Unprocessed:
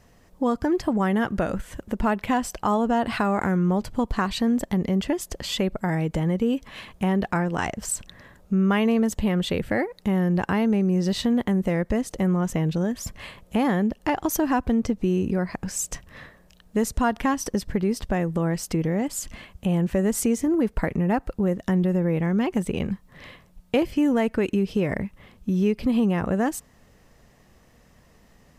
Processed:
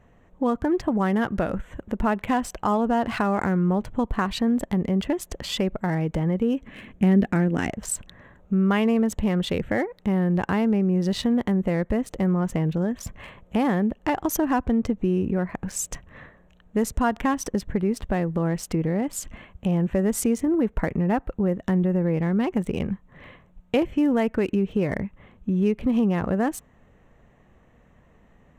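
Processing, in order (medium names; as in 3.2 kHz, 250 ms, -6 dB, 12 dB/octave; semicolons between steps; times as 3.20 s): local Wiener filter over 9 samples; 6.63–7.70 s: graphic EQ 250/1000/2000/4000 Hz +9/-9/+3/-3 dB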